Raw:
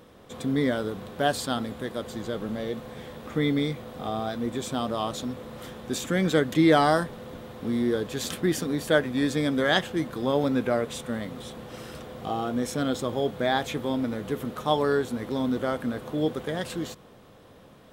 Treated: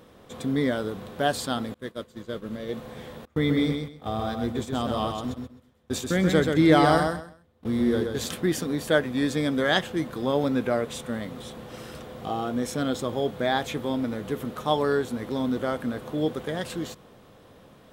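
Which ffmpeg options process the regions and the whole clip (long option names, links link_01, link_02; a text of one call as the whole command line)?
ffmpeg -i in.wav -filter_complex "[0:a]asettb=1/sr,asplit=3[link_01][link_02][link_03];[link_01]atrim=end=1.744[link_04];[link_02]atrim=start=1.74:end=2.69,asetpts=PTS-STARTPTS,afade=type=in:duration=0.004:curve=qsin,afade=type=out:start_time=0.946:duration=0.004:curve=qsin,agate=range=-33dB:threshold=-29dB:ratio=3:release=100:detection=peak,equalizer=frequency=780:width=4.8:gain=-10[link_05];[link_03]atrim=start=2.686[link_06];[link_04][link_05]acrossfade=duration=0.004:curve1=hsin:curve2=qsin[link_07];[link_07][link_06]acrossfade=duration=0.004:curve1=qsin:curve2=hsin,asettb=1/sr,asplit=3[link_08][link_09][link_10];[link_08]atrim=end=3.254[link_11];[link_09]atrim=start=3.25:end=8.26,asetpts=PTS-STARTPTS,afade=type=in:duration=0.004:curve=qsin,afade=type=out:start_time=5.006:duration=0.004:curve=qsin,agate=range=-28dB:threshold=-34dB:ratio=16:release=100:detection=peak,equalizer=frequency=77:width=2:gain=12.5,aecho=1:1:130|260|390:0.562|0.118|0.0248,atrim=end_sample=220941[link_12];[link_10]atrim=start=8.256[link_13];[link_11][link_12]acrossfade=duration=0.004:curve1=hsin:curve2=qsin[link_14];[link_14][link_13]acrossfade=duration=0.004:curve1=qsin:curve2=hsin" out.wav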